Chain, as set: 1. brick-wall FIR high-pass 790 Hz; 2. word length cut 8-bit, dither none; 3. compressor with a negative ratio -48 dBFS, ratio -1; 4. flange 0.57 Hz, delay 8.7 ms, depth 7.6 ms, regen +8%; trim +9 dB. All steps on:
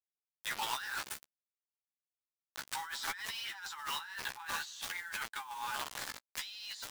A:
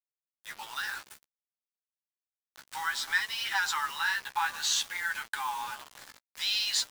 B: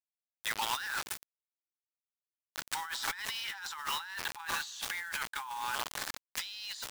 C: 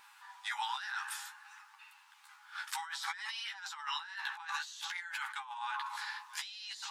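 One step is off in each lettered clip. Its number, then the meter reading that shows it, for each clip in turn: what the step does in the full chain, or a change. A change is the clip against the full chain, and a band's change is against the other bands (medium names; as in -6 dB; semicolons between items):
3, momentary loudness spread change +10 LU; 4, crest factor change +1.5 dB; 2, distortion -14 dB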